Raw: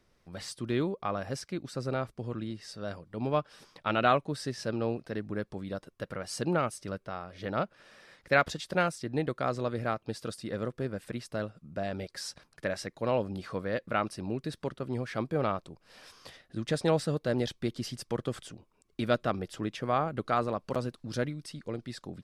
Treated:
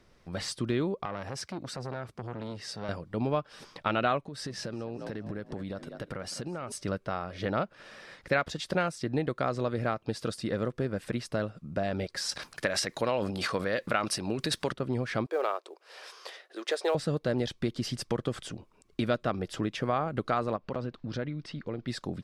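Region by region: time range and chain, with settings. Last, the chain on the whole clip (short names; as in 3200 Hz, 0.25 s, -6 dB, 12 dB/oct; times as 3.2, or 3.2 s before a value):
1.05–2.89 HPF 67 Hz 24 dB/oct + compressor 3:1, threshold -37 dBFS + core saturation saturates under 1300 Hz
4.28–6.72 frequency-shifting echo 0.198 s, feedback 34%, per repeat +55 Hz, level -16 dB + compressor 16:1, threshold -39 dBFS
12.29–14.73 transient shaper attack +4 dB, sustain +10 dB + tilt +2 dB/oct
15.26–16.95 elliptic high-pass 380 Hz, stop band 70 dB + short-mantissa float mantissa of 4-bit
20.56–21.88 LPF 3500 Hz + compressor 2:1, threshold -42 dBFS
whole clip: high shelf 11000 Hz -10.5 dB; compressor 2.5:1, threshold -35 dBFS; gain +7 dB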